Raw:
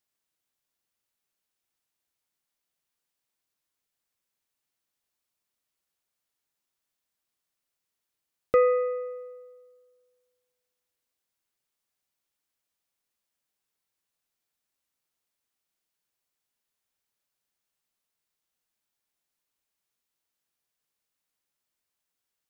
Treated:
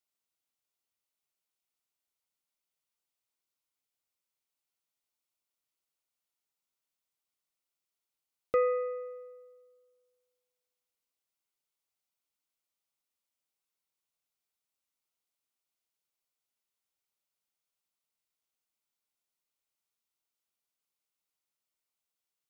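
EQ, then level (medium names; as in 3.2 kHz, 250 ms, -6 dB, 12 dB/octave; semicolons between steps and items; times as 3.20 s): bass shelf 320 Hz -4.5 dB; band-stop 1.7 kHz, Q 6.1; -5.0 dB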